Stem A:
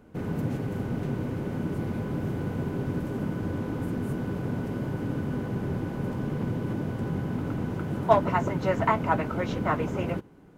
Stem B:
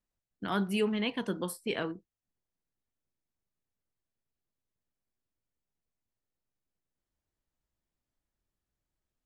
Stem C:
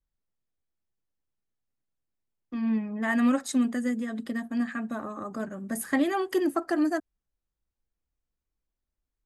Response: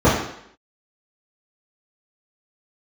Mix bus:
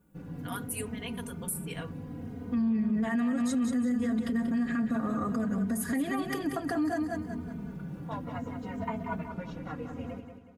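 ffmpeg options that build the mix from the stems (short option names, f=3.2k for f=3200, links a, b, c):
-filter_complex "[0:a]asplit=2[a][b];[b]adelay=3,afreqshift=-0.64[c];[a][c]amix=inputs=2:normalize=1,volume=-13dB,asplit=2[d][e];[e]volume=-8dB[f];[1:a]highpass=590,aexciter=amount=13.8:drive=3:freq=6.9k,volume=-8.5dB[g];[2:a]volume=2.5dB,asplit=3[h][i][j];[i]volume=-13.5dB[k];[j]apad=whole_len=466461[l];[d][l]sidechaincompress=threshold=-24dB:ratio=8:attack=16:release=793[m];[g][h]amix=inputs=2:normalize=0,acompressor=threshold=-34dB:ratio=2,volume=0dB[n];[f][k]amix=inputs=2:normalize=0,aecho=0:1:185|370|555|740|925|1110:1|0.4|0.16|0.064|0.0256|0.0102[o];[m][n][o]amix=inputs=3:normalize=0,equalizer=f=110:t=o:w=1.5:g=11.5,aecho=1:1:4.2:0.85,alimiter=limit=-22.5dB:level=0:latency=1:release=58"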